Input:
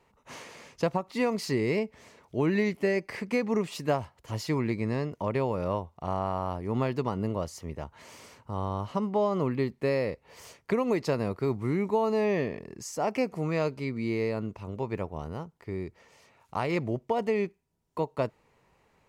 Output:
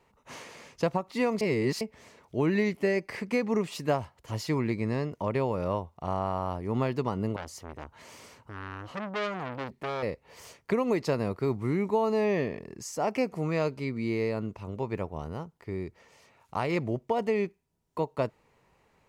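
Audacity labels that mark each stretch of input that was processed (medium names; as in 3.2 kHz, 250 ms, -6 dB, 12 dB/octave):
1.410000	1.810000	reverse
7.360000	10.030000	transformer saturation saturates under 2.2 kHz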